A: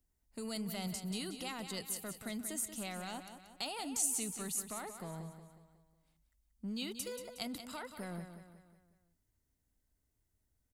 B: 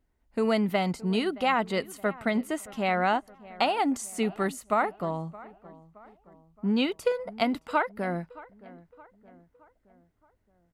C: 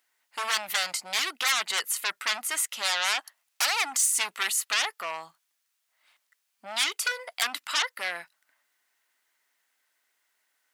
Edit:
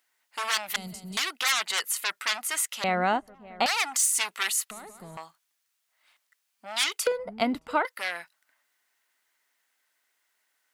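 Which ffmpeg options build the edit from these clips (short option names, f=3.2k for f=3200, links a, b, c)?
-filter_complex "[0:a]asplit=2[a][b];[1:a]asplit=2[c][d];[2:a]asplit=5[e][f][g][h][i];[e]atrim=end=0.762[j];[a]atrim=start=0.758:end=1.172[k];[f]atrim=start=1.168:end=2.842[l];[c]atrim=start=2.838:end=3.662[m];[g]atrim=start=3.658:end=4.712[n];[b]atrim=start=4.708:end=5.172[o];[h]atrim=start=5.168:end=7.072[p];[d]atrim=start=7.068:end=7.852[q];[i]atrim=start=7.848[r];[j][k]acrossfade=d=0.004:c1=hsin:c2=hsin[s];[s][l]acrossfade=d=0.004:c1=hsin:c2=hsin[t];[t][m]acrossfade=d=0.004:c1=hsin:c2=hsin[u];[u][n]acrossfade=d=0.004:c1=hsin:c2=hsin[v];[v][o]acrossfade=d=0.004:c1=hsin:c2=hsin[w];[w][p]acrossfade=d=0.004:c1=hsin:c2=hsin[x];[x][q]acrossfade=d=0.004:c1=hsin:c2=hsin[y];[y][r]acrossfade=d=0.004:c1=hsin:c2=hsin"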